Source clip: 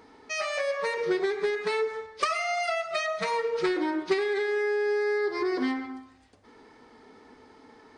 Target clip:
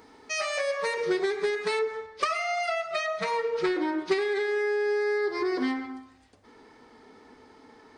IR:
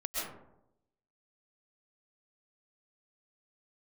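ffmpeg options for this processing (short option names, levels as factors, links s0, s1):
-af "asetnsamples=n=441:p=0,asendcmd='1.79 highshelf g -4.5;3.98 highshelf g 2',highshelf=f=6200:g=8"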